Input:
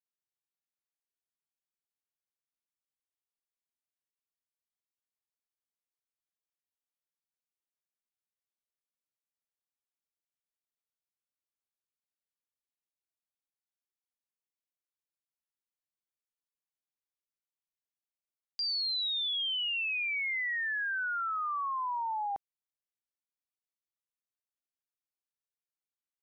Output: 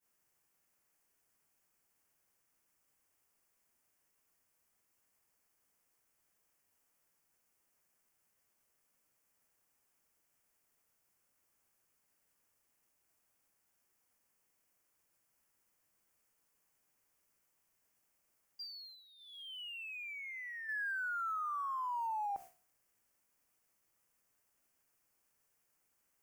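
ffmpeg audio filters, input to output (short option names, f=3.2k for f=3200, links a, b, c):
-filter_complex "[0:a]aeval=exprs='val(0)+0.5*0.00299*sgn(val(0))':c=same,flanger=delay=10:depth=5.6:regen=-86:speed=0.82:shape=sinusoidal,alimiter=level_in=19dB:limit=-24dB:level=0:latency=1:release=104,volume=-19dB,equalizer=f=3.8k:w=2.4:g=-14,asettb=1/sr,asplit=3[a][b][c];[a]atrim=end=18.624[d];[b]atrim=start=18.62:end=20.69,asetpts=PTS-STARTPTS,afade=t=in:d=0.004:c=qsin,afade=t=out:st=2.066:d=0.004:c=qsin,acompressor=threshold=-52dB:ratio=6[e];[c]atrim=start=20.686[f];[d][e]acrossfade=d=0.004:c1=hsin:c2=qsin[g];[g][f]acrossfade=d=0.004:c1=qsin:c2=hsin,agate=range=-33dB:threshold=-53dB:ratio=3:detection=peak,volume=9dB"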